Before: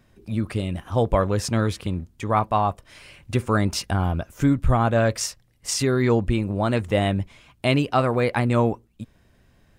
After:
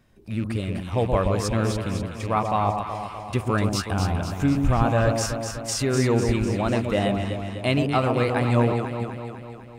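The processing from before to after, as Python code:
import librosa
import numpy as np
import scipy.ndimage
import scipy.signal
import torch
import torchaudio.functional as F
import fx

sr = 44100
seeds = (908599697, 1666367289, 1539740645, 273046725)

y = fx.rattle_buzz(x, sr, strikes_db=-25.0, level_db=-30.0)
y = fx.echo_alternate(y, sr, ms=125, hz=1000.0, feedback_pct=76, wet_db=-4.0)
y = y * librosa.db_to_amplitude(-2.5)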